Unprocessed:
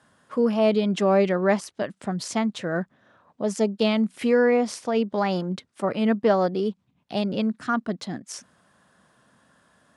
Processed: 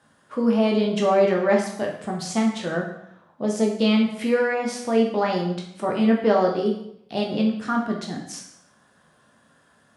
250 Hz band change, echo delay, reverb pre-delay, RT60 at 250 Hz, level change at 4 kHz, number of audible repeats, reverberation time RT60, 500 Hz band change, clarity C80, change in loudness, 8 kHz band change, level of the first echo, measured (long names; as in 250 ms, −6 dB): +2.5 dB, no echo audible, 6 ms, 0.75 s, +2.0 dB, no echo audible, 0.75 s, +1.0 dB, 8.5 dB, +1.5 dB, +1.5 dB, no echo audible